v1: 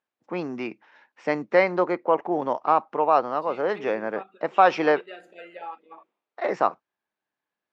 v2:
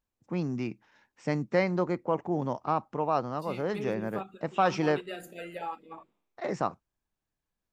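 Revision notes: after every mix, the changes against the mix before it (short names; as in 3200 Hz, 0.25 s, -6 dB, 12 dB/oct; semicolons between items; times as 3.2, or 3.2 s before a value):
first voice -9.0 dB; master: remove BPF 420–3200 Hz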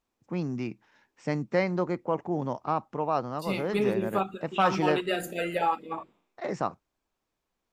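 second voice +10.5 dB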